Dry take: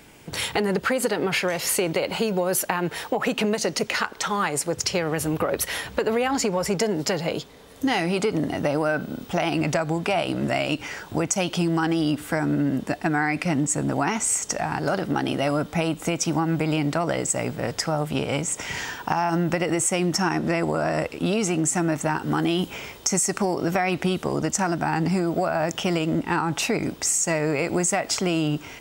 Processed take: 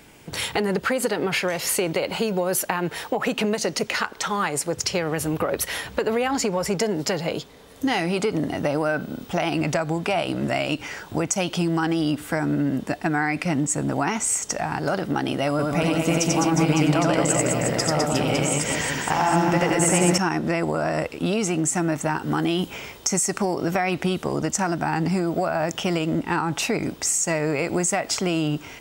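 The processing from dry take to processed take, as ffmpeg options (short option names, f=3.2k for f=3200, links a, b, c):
-filter_complex "[0:a]asettb=1/sr,asplit=3[a][b][c];[a]atrim=end=15.504[d];[b]atrim=start=15.5:end=20.18,asetpts=PTS-STARTPTS,afade=t=in:d=0.004:c=qsin,afade=t=out:st=4.676:d=0.004:c=qsin,aecho=1:1:90|207|359.1|556.8|813.9:0.794|0.631|0.501|0.398|0.316,atrim=end_sample=206388[e];[c]atrim=start=20.176[f];[d][e]acrossfade=d=0.004:c1=hsin:c2=qsin[g];[g][f]acrossfade=d=0.004:c1=qsin:c2=hsin"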